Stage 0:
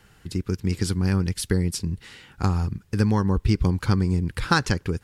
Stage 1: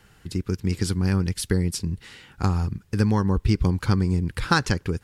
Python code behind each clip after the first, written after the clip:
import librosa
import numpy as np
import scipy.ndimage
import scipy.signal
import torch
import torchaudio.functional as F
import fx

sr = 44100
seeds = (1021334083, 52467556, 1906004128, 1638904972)

y = x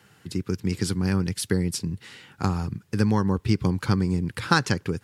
y = scipy.signal.sosfilt(scipy.signal.butter(4, 100.0, 'highpass', fs=sr, output='sos'), x)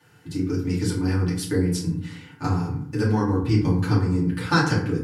y = fx.rev_fdn(x, sr, rt60_s=0.63, lf_ratio=1.35, hf_ratio=0.5, size_ms=20.0, drr_db=-8.5)
y = F.gain(torch.from_numpy(y), -8.5).numpy()